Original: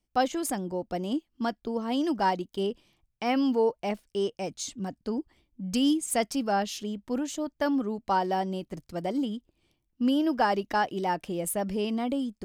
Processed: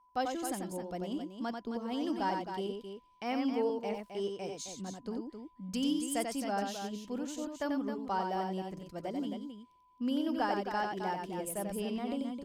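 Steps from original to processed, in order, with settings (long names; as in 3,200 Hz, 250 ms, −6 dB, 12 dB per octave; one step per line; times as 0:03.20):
steady tone 1,000 Hz −55 dBFS
loudspeakers that aren't time-aligned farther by 31 metres −5 dB, 91 metres −8 dB
level −8.5 dB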